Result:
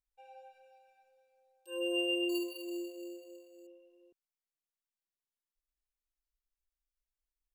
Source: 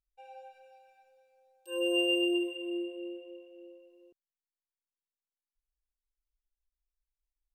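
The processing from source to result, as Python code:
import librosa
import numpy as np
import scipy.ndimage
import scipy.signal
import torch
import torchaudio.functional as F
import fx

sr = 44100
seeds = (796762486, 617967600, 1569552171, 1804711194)

y = fx.resample_bad(x, sr, factor=6, down='none', up='hold', at=(2.29, 3.67))
y = y * 10.0 ** (-4.5 / 20.0)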